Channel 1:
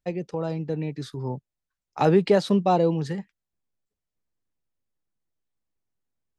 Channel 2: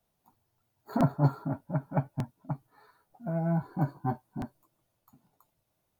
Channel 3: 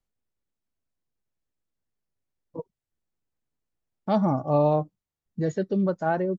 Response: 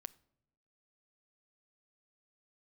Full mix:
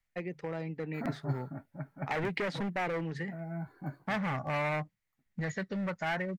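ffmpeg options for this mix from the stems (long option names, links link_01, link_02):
-filter_complex "[0:a]highshelf=frequency=5000:gain=-8.5,bandreject=frequency=50:width_type=h:width=6,bandreject=frequency=100:width_type=h:width=6,bandreject=frequency=150:width_type=h:width=6,adelay=100,volume=-7.5dB[link_01];[1:a]agate=range=-13dB:threshold=-57dB:ratio=16:detection=peak,equalizer=frequency=960:width=5.1:gain=-8,adelay=50,volume=-10.5dB[link_02];[2:a]equalizer=frequency=360:width_type=o:width=1.2:gain=-13,volume=-0.5dB,asplit=2[link_03][link_04];[link_04]apad=whole_len=266719[link_05];[link_02][link_05]sidechaincompress=threshold=-33dB:ratio=8:attack=16:release=739[link_06];[link_01][link_03]amix=inputs=2:normalize=0,asoftclip=type=hard:threshold=-29dB,acompressor=threshold=-32dB:ratio=6,volume=0dB[link_07];[link_06][link_07]amix=inputs=2:normalize=0,equalizer=frequency=2000:width=2.1:gain=14"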